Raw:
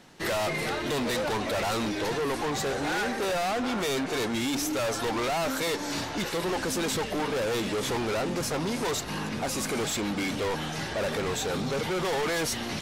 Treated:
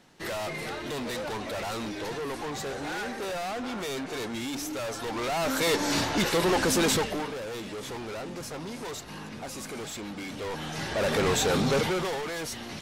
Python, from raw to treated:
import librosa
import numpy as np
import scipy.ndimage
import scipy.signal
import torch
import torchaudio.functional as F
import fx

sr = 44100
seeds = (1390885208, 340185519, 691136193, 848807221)

y = fx.gain(x, sr, db=fx.line((5.04, -5.0), (5.77, 5.0), (6.92, 5.0), (7.39, -8.0), (10.27, -8.0), (11.23, 5.0), (11.77, 5.0), (12.24, -6.0)))